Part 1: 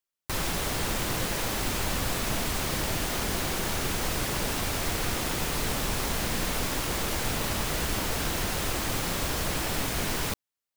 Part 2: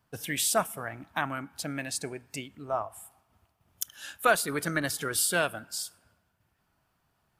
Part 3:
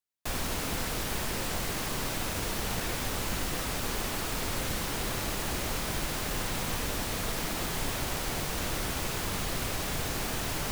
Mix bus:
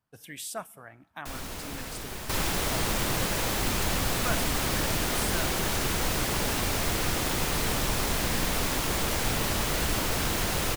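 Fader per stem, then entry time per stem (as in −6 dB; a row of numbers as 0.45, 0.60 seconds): +1.0, −10.5, −5.5 decibels; 2.00, 0.00, 1.00 seconds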